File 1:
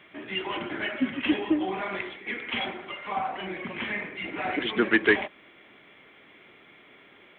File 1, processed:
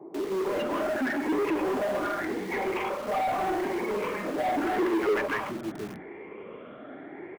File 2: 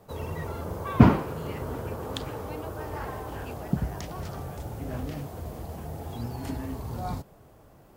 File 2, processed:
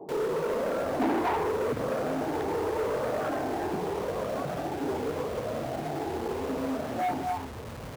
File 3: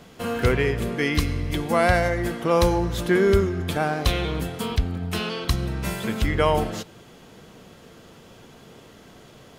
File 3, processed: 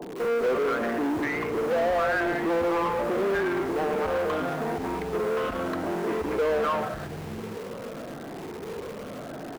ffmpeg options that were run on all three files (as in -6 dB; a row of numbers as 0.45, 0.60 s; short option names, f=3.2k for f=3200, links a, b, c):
-filter_complex "[0:a]afftfilt=real='re*pow(10,12/40*sin(2*PI*(0.72*log(max(b,1)*sr/1024/100)/log(2)-(0.83)*(pts-256)/sr)))':imag='im*pow(10,12/40*sin(2*PI*(0.72*log(max(b,1)*sr/1024/100)/log(2)-(0.83)*(pts-256)/sr)))':win_size=1024:overlap=0.75,bandreject=f=60:t=h:w=6,bandreject=f=120:t=h:w=6,bandreject=f=180:t=h:w=6,bandreject=f=240:t=h:w=6,bandreject=f=300:t=h:w=6,bandreject=f=360:t=h:w=6,acrossover=split=170|860[a][b][c];[c]adelay=240[d];[a]adelay=720[e];[e][b][d]amix=inputs=3:normalize=0,adynamicsmooth=sensitivity=0.5:basefreq=510,aresample=16000,asoftclip=type=tanh:threshold=-16.5dB,aresample=44100,asplit=2[f][g];[g]highpass=f=720:p=1,volume=31dB,asoftclip=type=tanh:threshold=-16.5dB[h];[f][h]amix=inputs=2:normalize=0,lowpass=f=3.5k:p=1,volume=-6dB,asplit=2[i][j];[j]aeval=exprs='(mod(42.2*val(0)+1,2)-1)/42.2':c=same,volume=-4.5dB[k];[i][k]amix=inputs=2:normalize=0,acrossover=split=230|2400[l][m][n];[l]acompressor=threshold=-42dB:ratio=4[o];[n]acompressor=threshold=-45dB:ratio=4[p];[o][m][p]amix=inputs=3:normalize=0,volume=-2.5dB"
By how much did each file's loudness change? -0.5, 0.0, -4.0 LU